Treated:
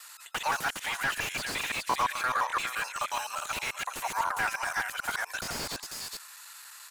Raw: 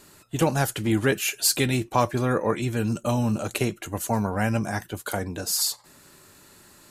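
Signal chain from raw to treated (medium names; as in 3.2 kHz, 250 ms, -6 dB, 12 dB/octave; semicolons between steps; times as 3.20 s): time reversed locally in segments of 86 ms; inverse Chebyshev high-pass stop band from 290 Hz, stop band 60 dB; peak limiter -19 dBFS, peak gain reduction 10.5 dB; on a send: delay 408 ms -11.5 dB; on the sum: crackling interface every 0.59 s, samples 1024, repeat, from 0.71 s; slew-rate limiter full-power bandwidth 46 Hz; trim +6 dB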